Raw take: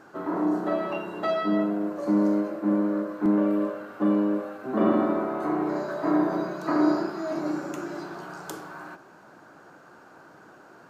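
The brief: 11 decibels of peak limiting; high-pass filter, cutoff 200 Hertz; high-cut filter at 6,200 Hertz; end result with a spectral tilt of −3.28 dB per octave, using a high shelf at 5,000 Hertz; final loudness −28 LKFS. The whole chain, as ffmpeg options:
ffmpeg -i in.wav -af "highpass=200,lowpass=6200,highshelf=frequency=5000:gain=-3.5,volume=2dB,alimiter=limit=-19dB:level=0:latency=1" out.wav

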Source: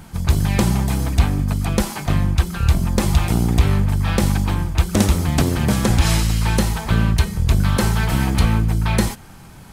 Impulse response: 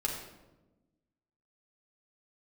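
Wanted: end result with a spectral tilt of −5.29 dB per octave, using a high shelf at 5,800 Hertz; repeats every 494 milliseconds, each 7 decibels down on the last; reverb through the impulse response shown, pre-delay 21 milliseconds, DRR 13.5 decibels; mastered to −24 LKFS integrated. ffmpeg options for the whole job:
-filter_complex "[0:a]highshelf=frequency=5800:gain=3.5,aecho=1:1:494|988|1482|1976|2470:0.447|0.201|0.0905|0.0407|0.0183,asplit=2[link_01][link_02];[1:a]atrim=start_sample=2205,adelay=21[link_03];[link_02][link_03]afir=irnorm=-1:irlink=0,volume=-18dB[link_04];[link_01][link_04]amix=inputs=2:normalize=0,volume=-6dB"

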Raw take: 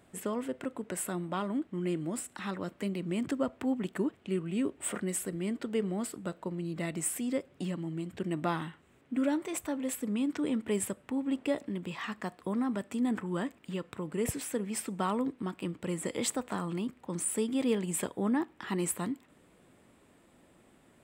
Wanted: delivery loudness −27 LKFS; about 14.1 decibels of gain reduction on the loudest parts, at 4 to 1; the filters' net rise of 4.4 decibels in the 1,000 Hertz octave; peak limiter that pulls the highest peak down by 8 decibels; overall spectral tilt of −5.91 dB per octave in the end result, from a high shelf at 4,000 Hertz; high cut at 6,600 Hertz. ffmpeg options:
ffmpeg -i in.wav -af "lowpass=6600,equalizer=frequency=1000:width_type=o:gain=6,highshelf=frequency=4000:gain=-8,acompressor=threshold=-41dB:ratio=4,volume=18.5dB,alimiter=limit=-16.5dB:level=0:latency=1" out.wav

